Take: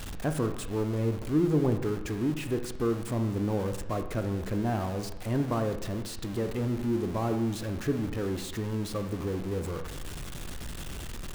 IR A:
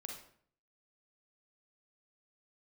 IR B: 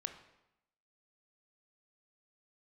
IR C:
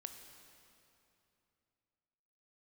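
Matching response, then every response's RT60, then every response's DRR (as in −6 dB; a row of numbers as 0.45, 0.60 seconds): B; 0.55, 0.85, 2.9 seconds; 0.5, 7.0, 6.0 decibels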